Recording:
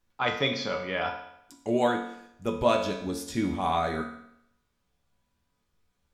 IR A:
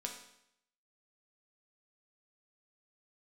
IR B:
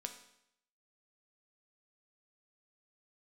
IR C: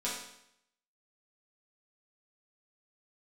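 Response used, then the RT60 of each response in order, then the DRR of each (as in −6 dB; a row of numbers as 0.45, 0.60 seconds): A; 0.75, 0.75, 0.75 seconds; 1.0, 5.0, −7.5 decibels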